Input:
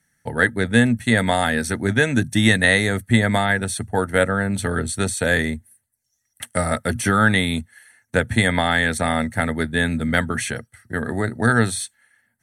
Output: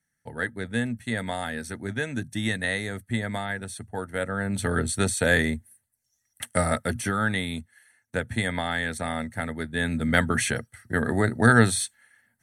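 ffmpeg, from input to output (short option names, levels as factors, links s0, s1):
-af "volume=2.24,afade=t=in:st=4.21:d=0.56:silence=0.334965,afade=t=out:st=6.62:d=0.52:silence=0.446684,afade=t=in:st=9.69:d=0.66:silence=0.354813"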